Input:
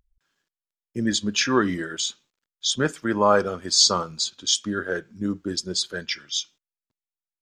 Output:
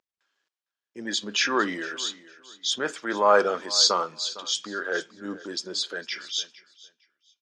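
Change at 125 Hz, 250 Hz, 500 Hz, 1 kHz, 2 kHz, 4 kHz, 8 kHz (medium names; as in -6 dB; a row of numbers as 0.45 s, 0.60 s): -15.5 dB, -8.5 dB, -1.0 dB, 0.0 dB, +0.5 dB, -2.0 dB, -5.0 dB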